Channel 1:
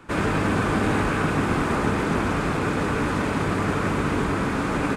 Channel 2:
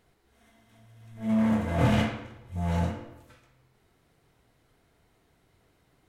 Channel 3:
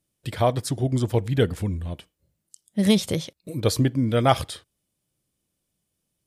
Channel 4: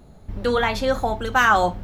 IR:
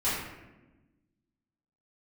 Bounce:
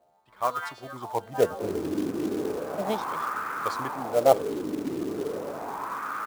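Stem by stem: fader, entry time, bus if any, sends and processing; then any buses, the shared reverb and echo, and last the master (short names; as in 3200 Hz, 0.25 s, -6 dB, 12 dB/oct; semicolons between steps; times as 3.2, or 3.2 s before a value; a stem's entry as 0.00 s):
+1.5 dB, 1.50 s, no send, dry
-4.0 dB, 0.00 s, no send, steep low-pass 1200 Hz; compressor, threshold -32 dBFS, peak gain reduction 13 dB
+2.0 dB, 0.00 s, no send, AGC gain up to 6.5 dB; three-band expander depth 70%
-3.0 dB, 0.00 s, no send, frequency quantiser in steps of 2 st; high shelf 3600 Hz +6.5 dB; auto duck -7 dB, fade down 0.95 s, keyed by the third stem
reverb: off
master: wah 0.36 Hz 320–1300 Hz, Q 4.2; short-mantissa float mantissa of 2-bit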